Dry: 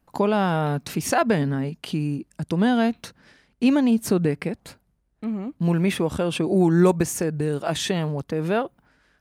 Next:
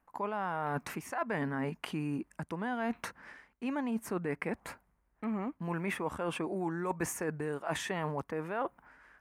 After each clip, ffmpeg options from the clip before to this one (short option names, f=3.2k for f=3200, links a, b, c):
-af "equalizer=f=125:t=o:w=1:g=-6,equalizer=f=1k:t=o:w=1:g=10,equalizer=f=2k:t=o:w=1:g=8,equalizer=f=4k:t=o:w=1:g=-9,areverse,acompressor=threshold=-27dB:ratio=12,areverse,volume=-4dB"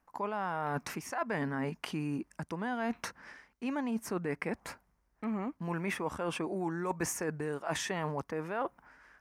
-af "equalizer=f=5.5k:t=o:w=0.6:g=7.5"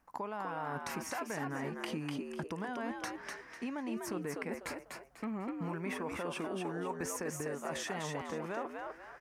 -filter_complex "[0:a]acompressor=threshold=-39dB:ratio=6,asplit=2[a][b];[b]asplit=4[c][d][e][f];[c]adelay=248,afreqshift=83,volume=-4dB[g];[d]adelay=496,afreqshift=166,volume=-14.2dB[h];[e]adelay=744,afreqshift=249,volume=-24.3dB[i];[f]adelay=992,afreqshift=332,volume=-34.5dB[j];[g][h][i][j]amix=inputs=4:normalize=0[k];[a][k]amix=inputs=2:normalize=0,volume=2.5dB"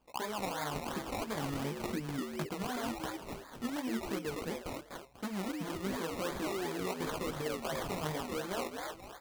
-af "flanger=delay=15:depth=6.3:speed=0.95,acrusher=samples=22:mix=1:aa=0.000001:lfo=1:lforange=13.2:lforate=2.8,volume=4.5dB"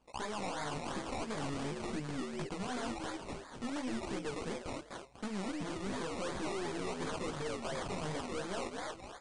-af "aeval=exprs='(tanh(63.1*val(0)+0.5)-tanh(0.5))/63.1':c=same,volume=3dB" -ar 22050 -c:a libmp3lame -b:a 48k